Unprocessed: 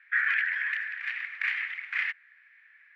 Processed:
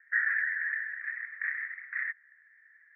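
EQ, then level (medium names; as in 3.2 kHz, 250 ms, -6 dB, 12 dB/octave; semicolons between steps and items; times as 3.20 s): Chebyshev high-pass 580 Hz, order 2; four-pole ladder low-pass 2 kHz, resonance 75%; static phaser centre 780 Hz, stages 6; 0.0 dB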